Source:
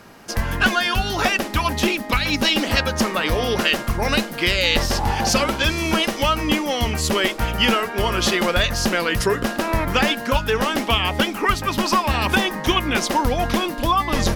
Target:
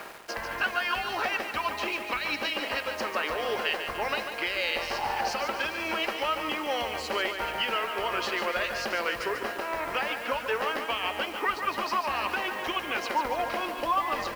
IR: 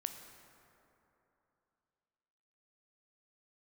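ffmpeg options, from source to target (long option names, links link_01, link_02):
-filter_complex "[0:a]areverse,acompressor=mode=upward:threshold=-19dB:ratio=2.5,areverse,bandreject=frequency=3500:width=6.4,alimiter=limit=-15.5dB:level=0:latency=1:release=451,aeval=exprs='sgn(val(0))*max(abs(val(0))-0.00794,0)':channel_layout=same,acrossover=split=380 4500:gain=0.1 1 0.141[link_01][link_02][link_03];[link_01][link_02][link_03]amix=inputs=3:normalize=0,acrusher=bits=7:mix=0:aa=0.000001,equalizer=frequency=6600:width=1.5:gain=-2,aecho=1:1:145|290|435|580|725|870|1015:0.398|0.219|0.12|0.0662|0.0364|0.02|0.011"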